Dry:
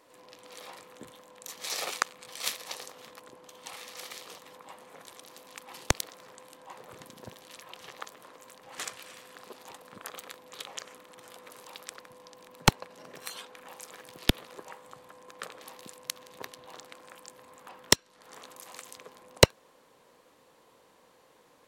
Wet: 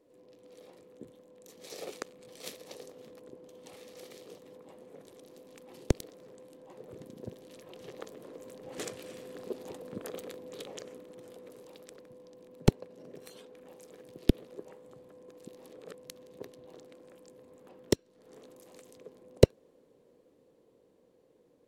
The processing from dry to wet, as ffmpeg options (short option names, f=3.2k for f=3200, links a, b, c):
-filter_complex "[0:a]asplit=3[a][b][c];[a]atrim=end=15.372[d];[b]atrim=start=15.368:end=15.972,asetpts=PTS-STARTPTS,areverse[e];[c]atrim=start=15.968[f];[d][e]acrossfade=d=0.004:c1=hsin:c2=hsin[g];[g][f]acrossfade=d=0.004:c1=hsin:c2=hsin,dynaudnorm=f=180:g=21:m=13dB,lowshelf=f=660:t=q:w=1.5:g=14,volume=-16dB"